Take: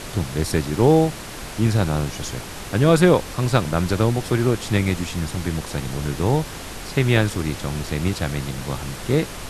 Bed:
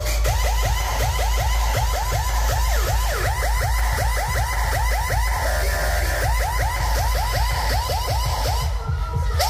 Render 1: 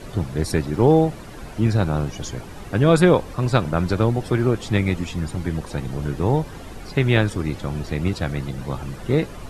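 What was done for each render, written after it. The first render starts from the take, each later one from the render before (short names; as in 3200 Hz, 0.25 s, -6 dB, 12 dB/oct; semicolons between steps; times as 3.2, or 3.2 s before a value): denoiser 12 dB, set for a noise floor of -34 dBFS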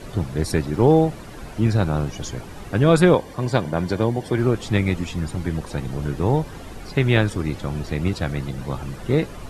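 3.15–4.38 notch comb 1300 Hz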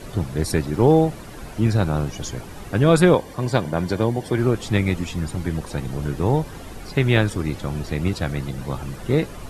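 high shelf 9800 Hz +6.5 dB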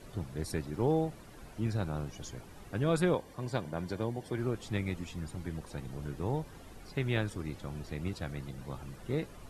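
gain -14 dB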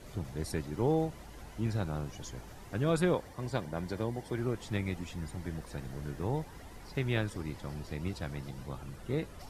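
add bed -33 dB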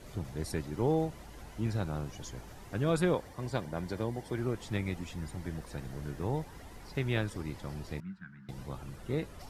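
8–8.49 double band-pass 540 Hz, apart 3 oct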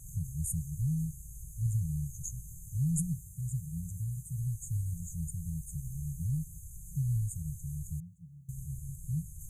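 FFT band-reject 180–6200 Hz; tone controls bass +4 dB, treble +11 dB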